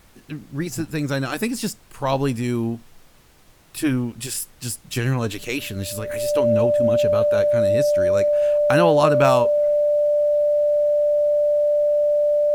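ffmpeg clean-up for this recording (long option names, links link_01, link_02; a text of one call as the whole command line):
ffmpeg -i in.wav -af "bandreject=frequency=590:width=30,agate=range=-21dB:threshold=-40dB" out.wav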